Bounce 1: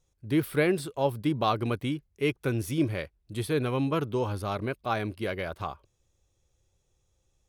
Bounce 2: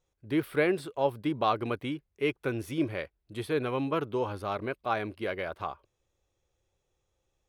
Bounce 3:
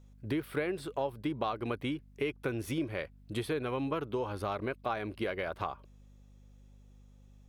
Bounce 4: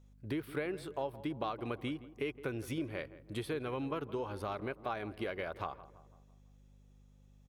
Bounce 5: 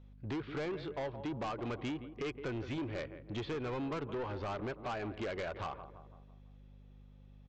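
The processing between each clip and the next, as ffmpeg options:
ffmpeg -i in.wav -af "bass=frequency=250:gain=-8,treble=frequency=4000:gain=-9" out.wav
ffmpeg -i in.wav -af "acompressor=threshold=-38dB:ratio=5,aeval=exprs='val(0)+0.000794*(sin(2*PI*50*n/s)+sin(2*PI*2*50*n/s)/2+sin(2*PI*3*50*n/s)/3+sin(2*PI*4*50*n/s)/4+sin(2*PI*5*50*n/s)/5)':channel_layout=same,volume=6.5dB" out.wav
ffmpeg -i in.wav -filter_complex "[0:a]asplit=2[link_01][link_02];[link_02]adelay=167,lowpass=frequency=1600:poles=1,volume=-15.5dB,asplit=2[link_03][link_04];[link_04]adelay=167,lowpass=frequency=1600:poles=1,volume=0.52,asplit=2[link_05][link_06];[link_06]adelay=167,lowpass=frequency=1600:poles=1,volume=0.52,asplit=2[link_07][link_08];[link_08]adelay=167,lowpass=frequency=1600:poles=1,volume=0.52,asplit=2[link_09][link_10];[link_10]adelay=167,lowpass=frequency=1600:poles=1,volume=0.52[link_11];[link_01][link_03][link_05][link_07][link_09][link_11]amix=inputs=6:normalize=0,volume=-4dB" out.wav
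ffmpeg -i in.wav -af "lowpass=frequency=4000:width=0.5412,lowpass=frequency=4000:width=1.3066,aresample=16000,asoftclip=type=tanh:threshold=-39dB,aresample=44100,volume=5dB" out.wav

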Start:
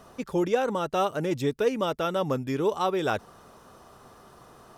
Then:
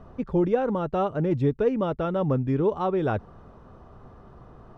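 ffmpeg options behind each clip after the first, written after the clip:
ffmpeg -i in.wav -af "lowpass=frequency=1500:poles=1,aemphasis=mode=reproduction:type=bsi" out.wav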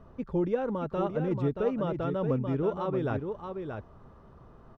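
ffmpeg -i in.wav -af "bandreject=frequency=740:width=15,aecho=1:1:628:0.473,volume=-5.5dB" out.wav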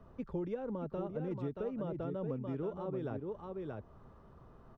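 ffmpeg -i in.wav -filter_complex "[0:a]acrossover=split=150|700[link_01][link_02][link_03];[link_01]acompressor=threshold=-44dB:ratio=4[link_04];[link_02]acompressor=threshold=-32dB:ratio=4[link_05];[link_03]acompressor=threshold=-48dB:ratio=4[link_06];[link_04][link_05][link_06]amix=inputs=3:normalize=0,volume=-4.5dB" out.wav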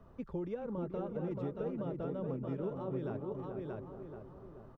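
ffmpeg -i in.wav -filter_complex "[0:a]asplit=2[link_01][link_02];[link_02]adelay=433,lowpass=frequency=1600:poles=1,volume=-6dB,asplit=2[link_03][link_04];[link_04]adelay=433,lowpass=frequency=1600:poles=1,volume=0.52,asplit=2[link_05][link_06];[link_06]adelay=433,lowpass=frequency=1600:poles=1,volume=0.52,asplit=2[link_07][link_08];[link_08]adelay=433,lowpass=frequency=1600:poles=1,volume=0.52,asplit=2[link_09][link_10];[link_10]adelay=433,lowpass=frequency=1600:poles=1,volume=0.52,asplit=2[link_11][link_12];[link_12]adelay=433,lowpass=frequency=1600:poles=1,volume=0.52[link_13];[link_01][link_03][link_05][link_07][link_09][link_11][link_13]amix=inputs=7:normalize=0,volume=-1dB" out.wav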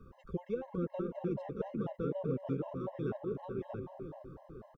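ffmpeg -i in.wav -filter_complex "[0:a]asplit=2[link_01][link_02];[link_02]adelay=210,highpass=300,lowpass=3400,asoftclip=type=hard:threshold=-34dB,volume=-13dB[link_03];[link_01][link_03]amix=inputs=2:normalize=0,afftfilt=real='re*gt(sin(2*PI*4*pts/sr)*(1-2*mod(floor(b*sr/1024/540),2)),0)':imag='im*gt(sin(2*PI*4*pts/sr)*(1-2*mod(floor(b*sr/1024/540),2)),0)':win_size=1024:overlap=0.75,volume=4dB" out.wav

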